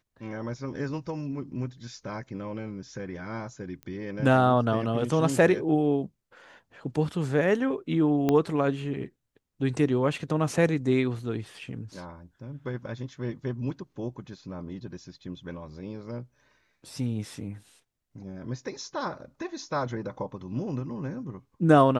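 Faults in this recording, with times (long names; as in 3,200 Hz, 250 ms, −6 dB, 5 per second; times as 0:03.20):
0:03.83: click −26 dBFS
0:08.29: click −12 dBFS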